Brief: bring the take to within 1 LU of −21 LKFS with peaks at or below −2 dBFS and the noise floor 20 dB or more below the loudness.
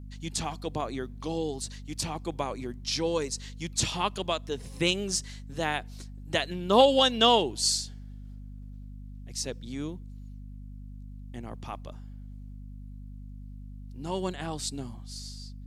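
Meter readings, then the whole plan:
mains hum 50 Hz; hum harmonics up to 250 Hz; level of the hum −40 dBFS; integrated loudness −29.0 LKFS; sample peak −6.0 dBFS; target loudness −21.0 LKFS
→ hum removal 50 Hz, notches 5
level +8 dB
brickwall limiter −2 dBFS

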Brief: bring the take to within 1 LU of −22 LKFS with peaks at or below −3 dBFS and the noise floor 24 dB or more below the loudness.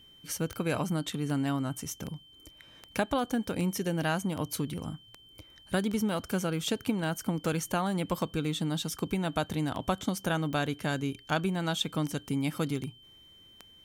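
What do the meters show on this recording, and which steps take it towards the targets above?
number of clicks 18; interfering tone 3,100 Hz; level of the tone −54 dBFS; integrated loudness −32.0 LKFS; sample peak −14.0 dBFS; target loudness −22.0 LKFS
→ click removal
notch filter 3,100 Hz, Q 30
level +10 dB

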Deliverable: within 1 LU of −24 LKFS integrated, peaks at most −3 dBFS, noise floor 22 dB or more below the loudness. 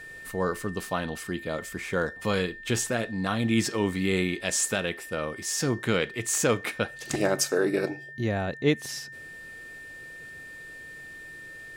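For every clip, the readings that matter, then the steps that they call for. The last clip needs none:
interfering tone 1,800 Hz; level of the tone −41 dBFS; integrated loudness −28.0 LKFS; sample peak −10.5 dBFS; target loudness −24.0 LKFS
→ notch filter 1,800 Hz, Q 30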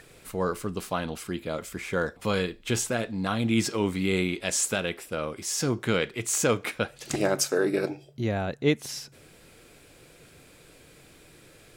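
interfering tone none found; integrated loudness −28.0 LKFS; sample peak −10.5 dBFS; target loudness −24.0 LKFS
→ level +4 dB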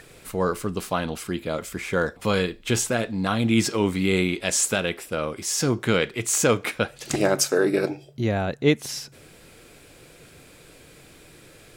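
integrated loudness −24.0 LKFS; sample peak −6.5 dBFS; background noise floor −50 dBFS

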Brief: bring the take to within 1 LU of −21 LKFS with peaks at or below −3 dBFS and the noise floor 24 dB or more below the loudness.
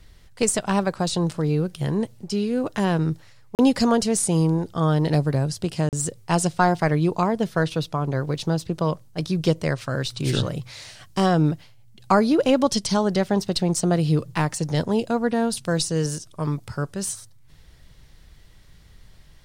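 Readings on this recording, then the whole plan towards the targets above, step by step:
number of dropouts 2; longest dropout 38 ms; integrated loudness −23.0 LKFS; sample peak −5.5 dBFS; target loudness −21.0 LKFS
→ repair the gap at 0:03.55/0:05.89, 38 ms
level +2 dB

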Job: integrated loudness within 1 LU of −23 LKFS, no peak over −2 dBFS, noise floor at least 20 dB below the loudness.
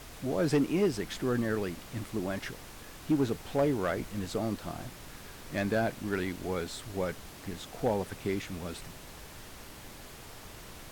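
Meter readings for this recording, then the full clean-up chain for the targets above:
share of clipped samples 0.3%; peaks flattened at −20.0 dBFS; background noise floor −48 dBFS; target noise floor −53 dBFS; integrated loudness −33.0 LKFS; sample peak −20.0 dBFS; target loudness −23.0 LKFS
→ clipped peaks rebuilt −20 dBFS
noise reduction from a noise print 6 dB
level +10 dB

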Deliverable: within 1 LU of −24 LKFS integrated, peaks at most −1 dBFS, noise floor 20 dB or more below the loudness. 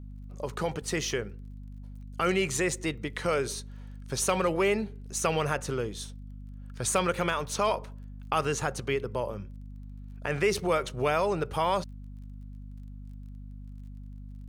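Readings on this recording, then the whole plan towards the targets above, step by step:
crackle rate 24 per second; mains hum 50 Hz; hum harmonics up to 250 Hz; level of the hum −40 dBFS; integrated loudness −29.5 LKFS; sample peak −12.0 dBFS; target loudness −24.0 LKFS
→ click removal
hum removal 50 Hz, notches 5
level +5.5 dB

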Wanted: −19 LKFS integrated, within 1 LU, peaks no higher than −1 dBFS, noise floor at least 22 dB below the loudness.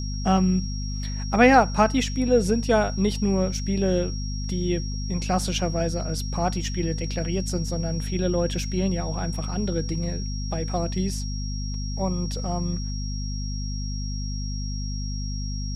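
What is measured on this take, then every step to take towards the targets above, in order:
mains hum 50 Hz; hum harmonics up to 250 Hz; level of the hum −27 dBFS; interfering tone 5,600 Hz; level of the tone −37 dBFS; integrated loudness −25.5 LKFS; sample peak −4.5 dBFS; target loudness −19.0 LKFS
→ mains-hum notches 50/100/150/200/250 Hz
notch filter 5,600 Hz, Q 30
level +6.5 dB
brickwall limiter −1 dBFS

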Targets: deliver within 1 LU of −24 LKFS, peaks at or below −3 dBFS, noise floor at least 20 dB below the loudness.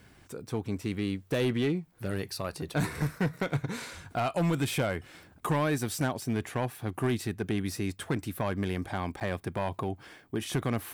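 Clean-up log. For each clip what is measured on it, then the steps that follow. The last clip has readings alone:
share of clipped samples 1.7%; peaks flattened at −22.0 dBFS; number of dropouts 1; longest dropout 9.3 ms; integrated loudness −32.0 LKFS; sample peak −22.0 dBFS; target loudness −24.0 LKFS
→ clipped peaks rebuilt −22 dBFS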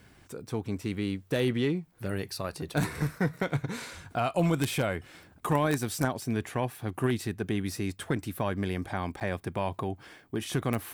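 share of clipped samples 0.0%; number of dropouts 1; longest dropout 9.3 ms
→ repair the gap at 0:09.20, 9.3 ms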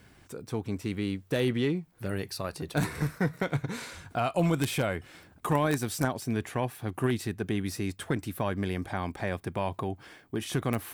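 number of dropouts 0; integrated loudness −31.5 LKFS; sample peak −13.0 dBFS; target loudness −24.0 LKFS
→ level +7.5 dB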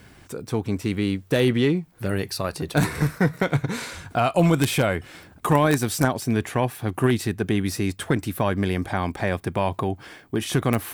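integrated loudness −24.0 LKFS; sample peak −5.5 dBFS; background noise floor −50 dBFS

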